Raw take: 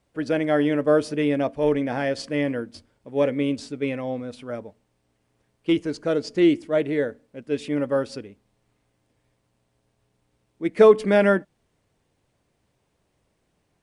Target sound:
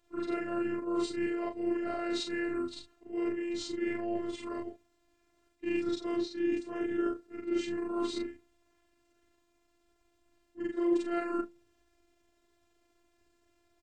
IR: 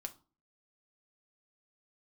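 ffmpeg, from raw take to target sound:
-af "afftfilt=real='re':imag='-im':win_size=4096:overlap=0.75,areverse,acompressor=threshold=-33dB:ratio=10,areverse,bandreject=frequency=198.9:width_type=h:width=4,bandreject=frequency=397.8:width_type=h:width=4,bandreject=frequency=596.7:width_type=h:width=4,asetrate=37084,aresample=44100,atempo=1.18921,afftfilt=real='hypot(re,im)*cos(PI*b)':imag='0':win_size=512:overlap=0.75,volume=8dB"

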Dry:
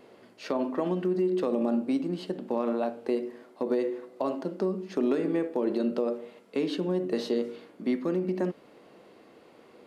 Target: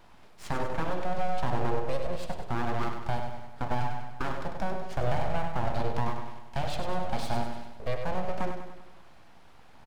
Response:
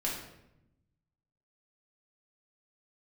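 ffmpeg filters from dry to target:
-af "highpass=frequency=100:width=0.5412,highpass=frequency=100:width=1.3066,aeval=exprs='abs(val(0))':channel_layout=same,aecho=1:1:98|196|294|392|490|588:0.447|0.237|0.125|0.0665|0.0352|0.0187"

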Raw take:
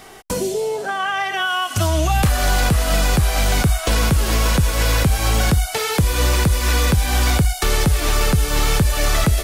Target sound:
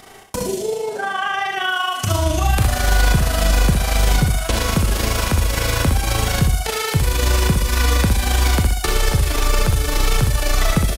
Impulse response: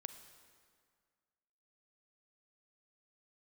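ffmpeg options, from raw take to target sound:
-filter_complex "[0:a]atempo=0.86,tremolo=f=26:d=0.667,aecho=1:1:62|124|186|248:0.501|0.185|0.0686|0.0254[link_01];[1:a]atrim=start_sample=2205,atrim=end_sample=3969[link_02];[link_01][link_02]afir=irnorm=-1:irlink=0,volume=6dB"

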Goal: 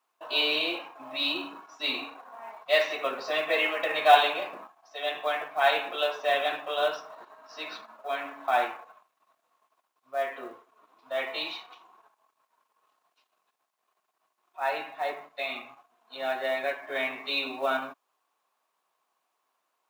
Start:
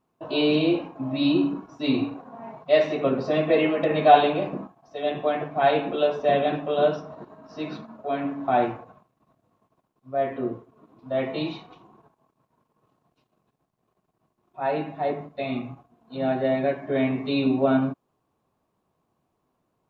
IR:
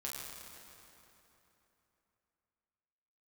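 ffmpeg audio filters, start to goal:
-af "highpass=1100,acrusher=bits=7:mode=log:mix=0:aa=0.000001,volume=4.5dB"

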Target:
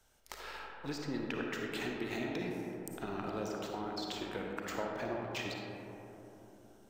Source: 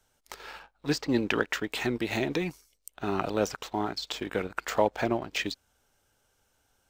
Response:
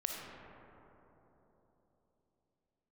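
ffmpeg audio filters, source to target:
-filter_complex "[0:a]acompressor=threshold=-44dB:ratio=2.5[link_01];[1:a]atrim=start_sample=2205[link_02];[link_01][link_02]afir=irnorm=-1:irlink=0,volume=1dB"

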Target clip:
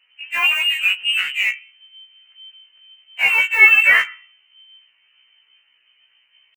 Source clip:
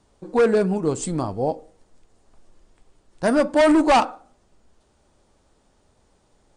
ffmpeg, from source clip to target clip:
ffmpeg -i in.wav -filter_complex "[0:a]bandreject=frequency=256.2:width_type=h:width=4,bandreject=frequency=512.4:width_type=h:width=4,bandreject=frequency=768.6:width_type=h:width=4,acrossover=split=1100[link_01][link_02];[link_01]acontrast=80[link_03];[link_03][link_02]amix=inputs=2:normalize=0,aeval=exprs='0.708*(cos(1*acos(clip(val(0)/0.708,-1,1)))-cos(1*PI/2))+0.0398*(cos(2*acos(clip(val(0)/0.708,-1,1)))-cos(2*PI/2))+0.00631*(cos(6*acos(clip(val(0)/0.708,-1,1)))-cos(6*PI/2))+0.0158*(cos(8*acos(clip(val(0)/0.708,-1,1)))-cos(8*PI/2))':channel_layout=same,asetrate=64194,aresample=44100,atempo=0.686977,lowpass=frequency=2600:width_type=q:width=0.5098,lowpass=frequency=2600:width_type=q:width=0.6013,lowpass=frequency=2600:width_type=q:width=0.9,lowpass=frequency=2600:width_type=q:width=2.563,afreqshift=-3100,asplit=2[link_04][link_05];[link_05]acrusher=bits=2:mix=0:aa=0.5,volume=-11dB[link_06];[link_04][link_06]amix=inputs=2:normalize=0,afftfilt=real='re*1.73*eq(mod(b,3),0)':imag='im*1.73*eq(mod(b,3),0)':win_size=2048:overlap=0.75,volume=-2dB" out.wav

